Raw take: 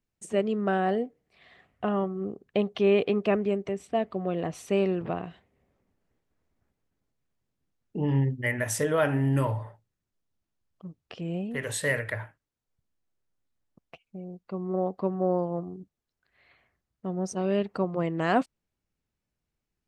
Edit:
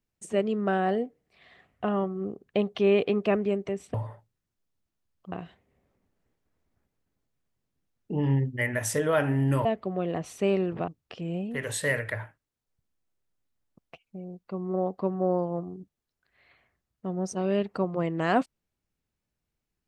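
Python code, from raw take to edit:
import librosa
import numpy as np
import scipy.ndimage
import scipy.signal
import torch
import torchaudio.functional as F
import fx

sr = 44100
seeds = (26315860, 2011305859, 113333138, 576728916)

y = fx.edit(x, sr, fx.swap(start_s=3.94, length_s=1.23, other_s=9.5, other_length_s=1.38), tone=tone)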